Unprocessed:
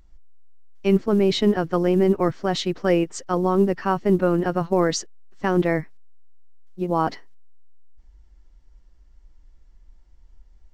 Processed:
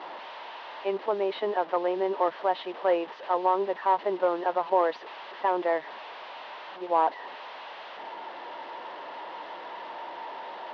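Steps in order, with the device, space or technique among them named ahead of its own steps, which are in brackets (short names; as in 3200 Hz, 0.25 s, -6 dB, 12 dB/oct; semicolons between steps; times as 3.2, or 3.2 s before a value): digital answering machine (BPF 400–3100 Hz; delta modulation 32 kbps, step -33 dBFS; speaker cabinet 430–3300 Hz, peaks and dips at 620 Hz +5 dB, 930 Hz +9 dB, 1400 Hz -4 dB, 2300 Hz -6 dB); gain -2 dB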